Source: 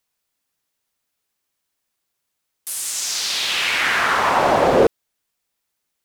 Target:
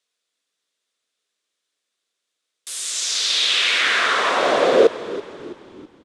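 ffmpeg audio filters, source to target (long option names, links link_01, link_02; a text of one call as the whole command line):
ffmpeg -i in.wav -filter_complex "[0:a]highpass=300,equalizer=frequency=460:width_type=q:width=4:gain=4,equalizer=frequency=860:width_type=q:width=4:gain=-10,equalizer=frequency=3600:width_type=q:width=4:gain=7,lowpass=frequency=9100:width=0.5412,lowpass=frequency=9100:width=1.3066,asplit=5[link_01][link_02][link_03][link_04][link_05];[link_02]adelay=328,afreqshift=-50,volume=-15dB[link_06];[link_03]adelay=656,afreqshift=-100,volume=-21.6dB[link_07];[link_04]adelay=984,afreqshift=-150,volume=-28.1dB[link_08];[link_05]adelay=1312,afreqshift=-200,volume=-34.7dB[link_09];[link_01][link_06][link_07][link_08][link_09]amix=inputs=5:normalize=0" out.wav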